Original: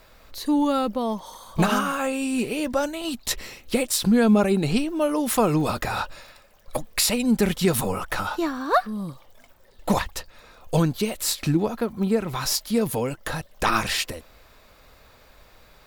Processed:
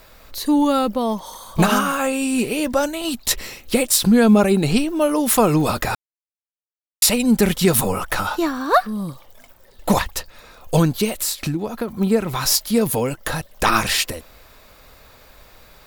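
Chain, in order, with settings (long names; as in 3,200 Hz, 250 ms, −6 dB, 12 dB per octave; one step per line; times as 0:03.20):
high-shelf EQ 8,300 Hz +6 dB
0:05.95–0:07.02: silence
0:11.09–0:11.88: downward compressor 5 to 1, threshold −25 dBFS, peak gain reduction 9 dB
level +4.5 dB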